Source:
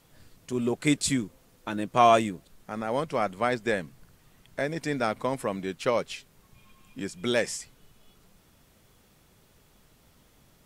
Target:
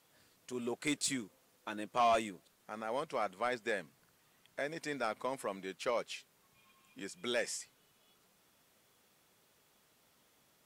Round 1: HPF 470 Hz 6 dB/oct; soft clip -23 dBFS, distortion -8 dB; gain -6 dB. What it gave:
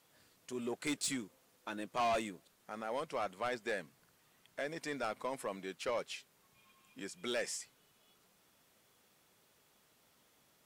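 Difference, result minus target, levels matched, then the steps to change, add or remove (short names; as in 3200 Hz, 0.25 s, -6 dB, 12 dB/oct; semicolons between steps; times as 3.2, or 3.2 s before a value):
soft clip: distortion +6 dB
change: soft clip -16.5 dBFS, distortion -13 dB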